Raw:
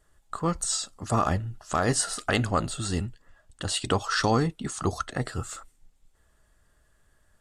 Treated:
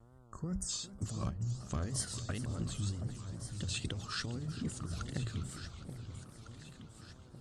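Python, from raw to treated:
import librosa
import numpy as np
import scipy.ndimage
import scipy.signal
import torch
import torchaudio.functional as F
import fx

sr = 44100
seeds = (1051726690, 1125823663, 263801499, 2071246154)

p1 = scipy.signal.sosfilt(scipy.signal.butter(2, 58.0, 'highpass', fs=sr, output='sos'), x)
p2 = fx.tone_stack(p1, sr, knobs='10-0-1')
p3 = fx.spec_repair(p2, sr, seeds[0], start_s=0.33, length_s=0.34, low_hz=2000.0, high_hz=4600.0, source='before')
p4 = fx.high_shelf(p3, sr, hz=7500.0, db=-8.5)
p5 = fx.hum_notches(p4, sr, base_hz=60, count=3)
p6 = fx.over_compress(p5, sr, threshold_db=-47.0, ratio=-1.0)
p7 = fx.dmg_buzz(p6, sr, base_hz=120.0, harmonics=12, level_db=-71.0, tilt_db=-6, odd_only=False)
p8 = fx.wow_flutter(p7, sr, seeds[1], rate_hz=2.1, depth_cents=130.0)
p9 = p8 + fx.echo_alternate(p8, sr, ms=727, hz=1000.0, feedback_pct=64, wet_db=-8.5, dry=0)
p10 = fx.echo_warbled(p9, sr, ms=402, feedback_pct=70, rate_hz=2.8, cents=166, wet_db=-15)
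y = p10 * 10.0 ** (10.0 / 20.0)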